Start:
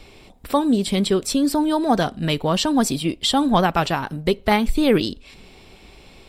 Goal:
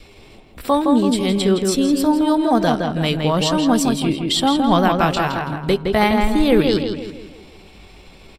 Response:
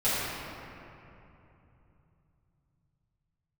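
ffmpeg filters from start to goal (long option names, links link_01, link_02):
-filter_complex "[0:a]adynamicequalizer=threshold=0.0178:dfrequency=850:dqfactor=7.1:tfrequency=850:tqfactor=7.1:attack=5:release=100:ratio=0.375:range=2.5:mode=cutabove:tftype=bell,atempo=0.75,asplit=2[link_01][link_02];[link_02]adelay=165,lowpass=frequency=2800:poles=1,volume=-3.5dB,asplit=2[link_03][link_04];[link_04]adelay=165,lowpass=frequency=2800:poles=1,volume=0.46,asplit=2[link_05][link_06];[link_06]adelay=165,lowpass=frequency=2800:poles=1,volume=0.46,asplit=2[link_07][link_08];[link_08]adelay=165,lowpass=frequency=2800:poles=1,volume=0.46,asplit=2[link_09][link_10];[link_10]adelay=165,lowpass=frequency=2800:poles=1,volume=0.46,asplit=2[link_11][link_12];[link_12]adelay=165,lowpass=frequency=2800:poles=1,volume=0.46[link_13];[link_03][link_05][link_07][link_09][link_11][link_13]amix=inputs=6:normalize=0[link_14];[link_01][link_14]amix=inputs=2:normalize=0,volume=1dB"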